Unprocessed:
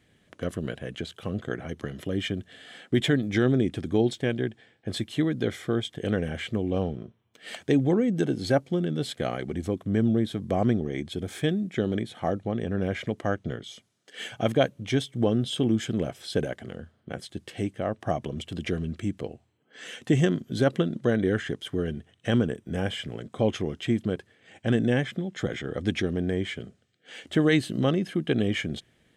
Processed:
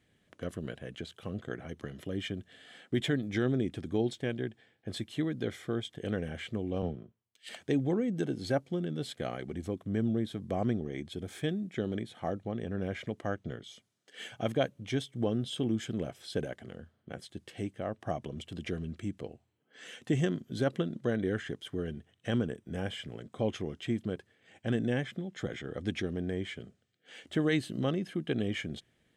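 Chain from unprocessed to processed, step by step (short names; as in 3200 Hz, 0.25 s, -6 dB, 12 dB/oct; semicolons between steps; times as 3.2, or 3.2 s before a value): 6.82–7.49 three-band expander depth 100%; gain -7 dB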